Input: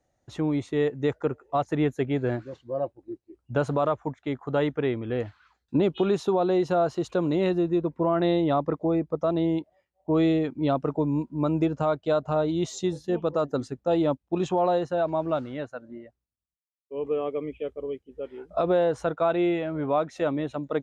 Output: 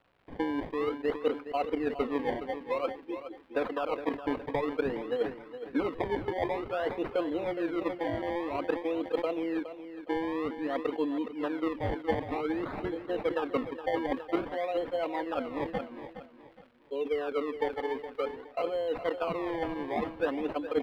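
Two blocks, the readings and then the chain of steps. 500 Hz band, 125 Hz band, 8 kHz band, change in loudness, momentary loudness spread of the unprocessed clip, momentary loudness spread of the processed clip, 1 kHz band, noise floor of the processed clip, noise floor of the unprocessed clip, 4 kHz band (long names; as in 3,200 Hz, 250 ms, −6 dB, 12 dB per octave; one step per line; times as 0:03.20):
−5.5 dB, −15.0 dB, can't be measured, −6.5 dB, 11 LU, 4 LU, −4.5 dB, −53 dBFS, −80 dBFS, −4.0 dB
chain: Chebyshev band-pass filter 340–6,500 Hz, order 3
comb filter 4 ms, depth 92%
reversed playback
downward compressor 10 to 1, threshold −29 dBFS, peak gain reduction 14 dB
reversed playback
transient designer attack +7 dB, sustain +3 dB
sample-and-hold swept by an LFO 23×, swing 100% 0.52 Hz
surface crackle 300 per second −45 dBFS
high-frequency loss of the air 470 metres
repeating echo 416 ms, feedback 33%, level −11.5 dB
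level that may fall only so fast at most 150 dB per second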